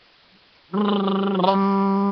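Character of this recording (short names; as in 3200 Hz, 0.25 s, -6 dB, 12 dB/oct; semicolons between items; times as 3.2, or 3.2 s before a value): a quantiser's noise floor 8-bit, dither triangular; Nellymoser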